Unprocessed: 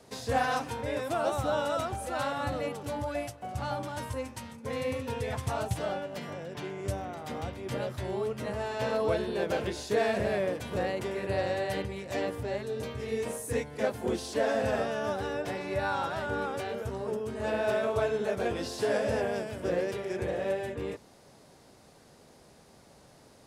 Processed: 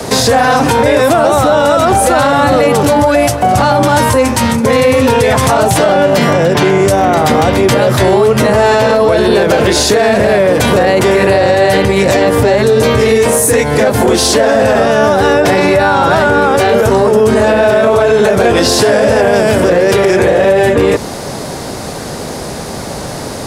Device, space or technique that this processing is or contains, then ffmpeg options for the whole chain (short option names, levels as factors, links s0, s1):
mastering chain: -filter_complex "[0:a]equalizer=f=2800:t=o:w=0.77:g=-2.5,acrossover=split=160|520[s0][s1][s2];[s0]acompressor=threshold=0.00447:ratio=4[s3];[s1]acompressor=threshold=0.0126:ratio=4[s4];[s2]acompressor=threshold=0.0178:ratio=4[s5];[s3][s4][s5]amix=inputs=3:normalize=0,acompressor=threshold=0.0141:ratio=2.5,asoftclip=type=tanh:threshold=0.0355,alimiter=level_in=63.1:limit=0.891:release=50:level=0:latency=1,volume=0.891"